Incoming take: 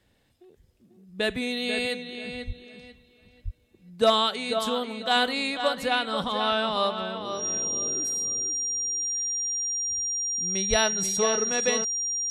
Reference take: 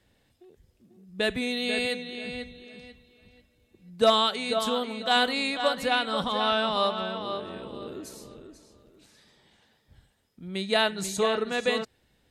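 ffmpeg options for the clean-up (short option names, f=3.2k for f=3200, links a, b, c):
-filter_complex "[0:a]bandreject=f=5.7k:w=30,asplit=3[a][b][c];[a]afade=t=out:st=2.46:d=0.02[d];[b]highpass=f=140:w=0.5412,highpass=f=140:w=1.3066,afade=t=in:st=2.46:d=0.02,afade=t=out:st=2.58:d=0.02[e];[c]afade=t=in:st=2.58:d=0.02[f];[d][e][f]amix=inputs=3:normalize=0,asplit=3[g][h][i];[g]afade=t=out:st=3.44:d=0.02[j];[h]highpass=f=140:w=0.5412,highpass=f=140:w=1.3066,afade=t=in:st=3.44:d=0.02,afade=t=out:st=3.56:d=0.02[k];[i]afade=t=in:st=3.56:d=0.02[l];[j][k][l]amix=inputs=3:normalize=0,asplit=3[m][n][o];[m]afade=t=out:st=10.69:d=0.02[p];[n]highpass=f=140:w=0.5412,highpass=f=140:w=1.3066,afade=t=in:st=10.69:d=0.02,afade=t=out:st=10.81:d=0.02[q];[o]afade=t=in:st=10.81:d=0.02[r];[p][q][r]amix=inputs=3:normalize=0"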